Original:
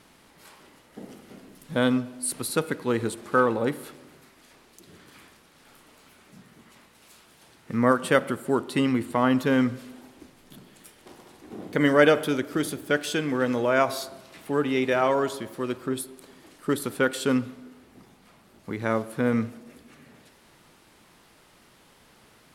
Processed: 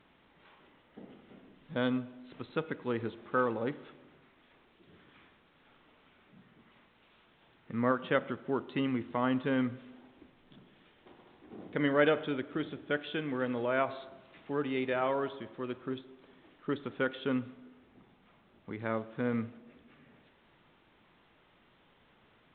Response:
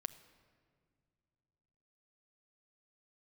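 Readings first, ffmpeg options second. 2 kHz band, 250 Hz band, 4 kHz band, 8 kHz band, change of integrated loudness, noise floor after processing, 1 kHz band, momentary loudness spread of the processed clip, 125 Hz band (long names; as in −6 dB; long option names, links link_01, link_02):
−8.5 dB, −8.5 dB, −9.5 dB, below −40 dB, −8.5 dB, −66 dBFS, −8.5 dB, 16 LU, −8.5 dB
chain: -af "volume=-8.5dB" -ar 8000 -c:a pcm_mulaw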